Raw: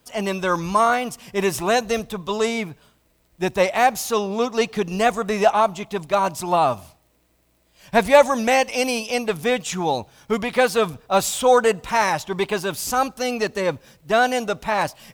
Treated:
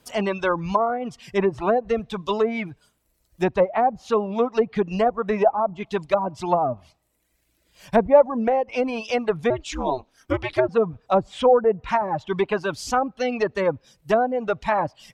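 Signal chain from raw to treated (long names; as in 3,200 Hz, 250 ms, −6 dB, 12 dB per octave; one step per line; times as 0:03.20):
0:09.50–0:10.69: ring modulation 130 Hz
treble cut that deepens with the level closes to 670 Hz, closed at −15 dBFS
reverb reduction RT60 1.2 s
level +1.5 dB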